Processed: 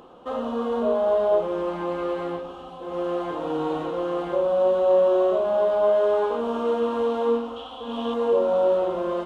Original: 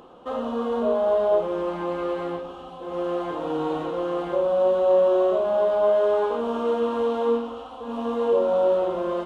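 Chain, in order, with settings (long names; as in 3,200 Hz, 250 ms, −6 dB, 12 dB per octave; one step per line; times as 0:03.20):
0:07.56–0:08.14: parametric band 3,300 Hz +13.5 dB 0.42 octaves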